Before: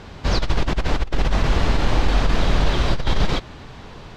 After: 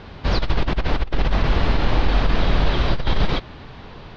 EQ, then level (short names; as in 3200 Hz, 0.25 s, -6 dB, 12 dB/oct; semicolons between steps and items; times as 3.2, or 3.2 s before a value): LPF 4800 Hz 24 dB/oct; 0.0 dB